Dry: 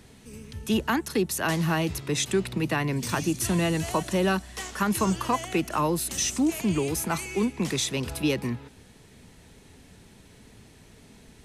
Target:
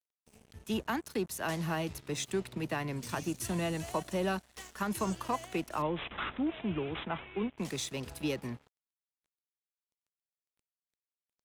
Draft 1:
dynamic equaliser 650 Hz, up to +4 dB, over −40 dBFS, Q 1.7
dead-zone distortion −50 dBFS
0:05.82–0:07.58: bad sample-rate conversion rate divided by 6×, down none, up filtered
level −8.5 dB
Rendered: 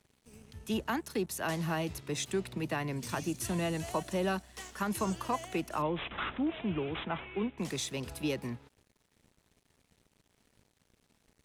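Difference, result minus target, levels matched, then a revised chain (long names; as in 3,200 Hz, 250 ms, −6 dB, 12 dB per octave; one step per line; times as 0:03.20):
dead-zone distortion: distortion −7 dB
dynamic equaliser 650 Hz, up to +4 dB, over −40 dBFS, Q 1.7
dead-zone distortion −41.5 dBFS
0:05.82–0:07.58: bad sample-rate conversion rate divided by 6×, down none, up filtered
level −8.5 dB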